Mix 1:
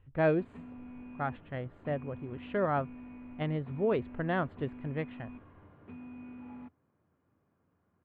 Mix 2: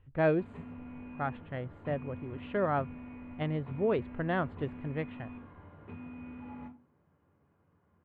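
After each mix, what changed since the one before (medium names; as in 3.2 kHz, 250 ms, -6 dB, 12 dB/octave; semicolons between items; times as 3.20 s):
reverb: on, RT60 0.30 s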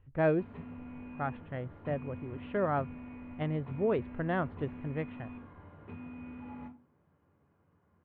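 speech: add distance through air 200 m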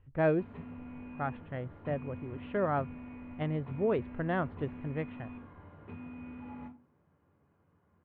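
no change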